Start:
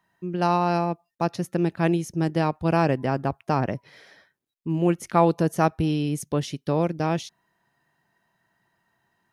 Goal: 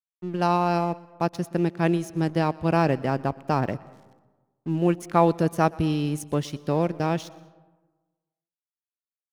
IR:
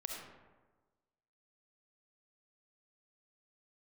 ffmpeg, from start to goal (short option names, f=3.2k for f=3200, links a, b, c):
-filter_complex "[0:a]aeval=exprs='sgn(val(0))*max(abs(val(0))-0.00531,0)':c=same,asplit=2[a][b];[1:a]atrim=start_sample=2205,adelay=121[c];[b][c]afir=irnorm=-1:irlink=0,volume=-19.5dB[d];[a][d]amix=inputs=2:normalize=0"